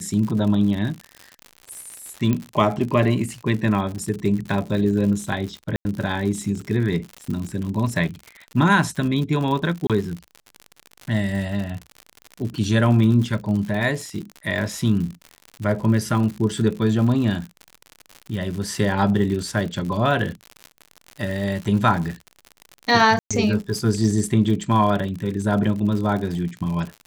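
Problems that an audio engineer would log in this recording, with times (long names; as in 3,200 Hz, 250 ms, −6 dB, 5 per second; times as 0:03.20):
surface crackle 89 per second −28 dBFS
0:02.33: click −10 dBFS
0:05.76–0:05.85: drop-out 90 ms
0:09.87–0:09.90: drop-out 27 ms
0:23.19–0:23.31: drop-out 116 ms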